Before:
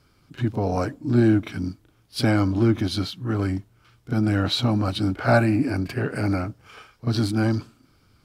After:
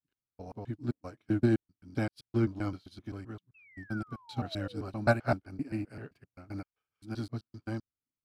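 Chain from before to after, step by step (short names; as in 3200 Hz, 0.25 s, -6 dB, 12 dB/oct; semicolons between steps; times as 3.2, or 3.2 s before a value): slices in reverse order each 0.13 s, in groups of 3; painted sound fall, 3.54–4.91, 370–2700 Hz -30 dBFS; upward expander 2.5:1, over -39 dBFS; gain -5 dB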